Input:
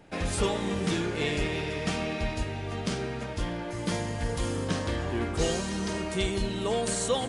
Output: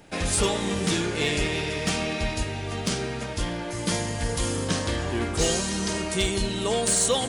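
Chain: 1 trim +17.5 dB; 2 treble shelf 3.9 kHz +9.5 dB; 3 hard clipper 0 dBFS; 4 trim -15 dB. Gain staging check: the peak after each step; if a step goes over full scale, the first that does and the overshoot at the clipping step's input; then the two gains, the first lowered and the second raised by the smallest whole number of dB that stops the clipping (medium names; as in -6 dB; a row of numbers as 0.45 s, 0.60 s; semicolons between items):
+1.0 dBFS, +5.5 dBFS, 0.0 dBFS, -15.0 dBFS; step 1, 5.5 dB; step 1 +11.5 dB, step 4 -9 dB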